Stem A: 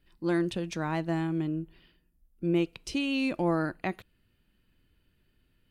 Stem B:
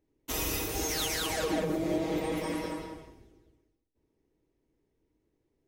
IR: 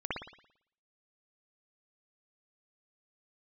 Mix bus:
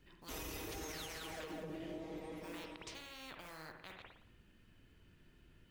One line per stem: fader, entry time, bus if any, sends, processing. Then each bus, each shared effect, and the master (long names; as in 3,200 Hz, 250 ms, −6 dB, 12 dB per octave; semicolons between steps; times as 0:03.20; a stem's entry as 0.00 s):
−12.5 dB, 0.00 s, send −7 dB, low-pass filter 4,500 Hz 12 dB per octave; log-companded quantiser 8 bits; every bin compressed towards the loudest bin 10 to 1
+0.5 dB, 0.00 s, no send, automatic ducking −16 dB, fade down 1.40 s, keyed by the first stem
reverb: on, pre-delay 56 ms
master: high-shelf EQ 4,300 Hz −5 dB; brickwall limiter −36 dBFS, peak gain reduction 10 dB